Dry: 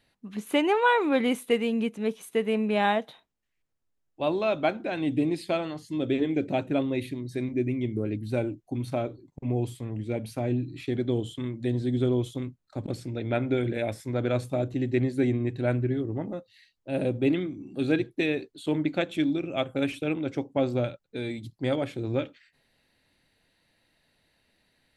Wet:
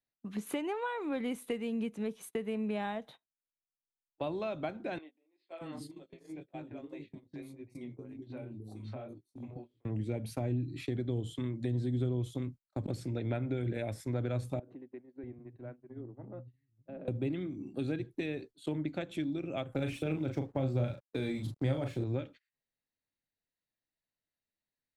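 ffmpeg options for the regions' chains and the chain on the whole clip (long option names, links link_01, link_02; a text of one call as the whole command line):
ffmpeg -i in.wav -filter_complex "[0:a]asettb=1/sr,asplit=3[link_01][link_02][link_03];[link_01]atrim=end=4.984[link_04];[link_02]atrim=start=4.98:end=9.85,asetpts=PTS-STARTPTS,afade=type=in:duration=0.004:curve=qsin,afade=type=out:start_time=4.866:duration=0.004:curve=qsin,flanger=delay=18:depth=4.2:speed=1.9,acompressor=threshold=-37dB:ratio=12:attack=3.2:release=140:knee=1:detection=peak,acrossover=split=360|4300[link_05][link_06][link_07];[link_07]adelay=410[link_08];[link_05]adelay=630[link_09];[link_09][link_06][link_08]amix=inputs=3:normalize=0,atrim=end_sample=214767[link_10];[link_03]atrim=start=9.846[link_11];[link_04][link_10]acrossfade=duration=0.004:curve1=hsin:curve2=qsin[link_12];[link_12][link_11]acrossfade=duration=0.004:curve1=qsin:curve2=hsin,asettb=1/sr,asplit=3[link_13][link_14][link_15];[link_13]atrim=end=14.594[link_16];[link_14]atrim=start=14.59:end=17.08,asetpts=PTS-STARTPTS,afade=type=in:duration=0.004:curve=qsin,afade=type=out:start_time=2.486:duration=0.004:curve=qsin,lowpass=1600,acompressor=threshold=-38dB:ratio=16:attack=3.2:release=140:knee=1:detection=peak,acrossover=split=180[link_17][link_18];[link_17]adelay=640[link_19];[link_19][link_18]amix=inputs=2:normalize=0,atrim=end_sample=109809[link_20];[link_15]atrim=start=17.076[link_21];[link_16][link_20]acrossfade=duration=0.004:curve1=hsin:curve2=qsin[link_22];[link_22][link_21]acrossfade=duration=0.004:curve1=qsin:curve2=hsin,asettb=1/sr,asplit=3[link_23][link_24][link_25];[link_23]atrim=end=19.724[link_26];[link_24]atrim=start=19.72:end=22.04,asetpts=PTS-STARTPTS,afade=type=in:duration=0.004:curve=qsin,afade=type=out:start_time=2.316:duration=0.004:curve=qsin,acontrast=38,aeval=exprs='sgn(val(0))*max(abs(val(0))-0.00251,0)':channel_layout=same,asplit=2[link_27][link_28];[link_28]adelay=38,volume=-5.5dB[link_29];[link_27][link_29]amix=inputs=2:normalize=0,atrim=end_sample=102312[link_30];[link_25]atrim=start=22.036[link_31];[link_26][link_30]acrossfade=duration=0.004:curve1=hsin:curve2=qsin[link_32];[link_32][link_31]acrossfade=duration=0.004:curve1=qsin:curve2=hsin,agate=range=-26dB:threshold=-43dB:ratio=16:detection=peak,equalizer=frequency=2900:width=1.5:gain=-2.5,acrossover=split=140[link_33][link_34];[link_34]acompressor=threshold=-33dB:ratio=6[link_35];[link_33][link_35]amix=inputs=2:normalize=0,volume=-1dB" out.wav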